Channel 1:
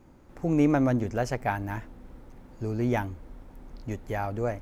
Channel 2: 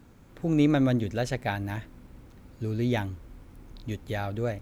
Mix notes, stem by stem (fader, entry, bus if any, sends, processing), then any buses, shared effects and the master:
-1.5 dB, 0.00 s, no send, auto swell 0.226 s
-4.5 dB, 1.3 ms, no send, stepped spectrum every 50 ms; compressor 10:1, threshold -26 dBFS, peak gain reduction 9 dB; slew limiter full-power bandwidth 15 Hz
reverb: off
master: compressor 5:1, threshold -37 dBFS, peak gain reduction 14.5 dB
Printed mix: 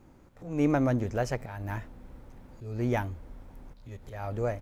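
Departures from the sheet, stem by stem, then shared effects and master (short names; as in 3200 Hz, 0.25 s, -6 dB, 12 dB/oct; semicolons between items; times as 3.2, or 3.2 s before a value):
stem 2 -4.5 dB -> -10.5 dB; master: missing compressor 5:1, threshold -37 dBFS, peak gain reduction 14.5 dB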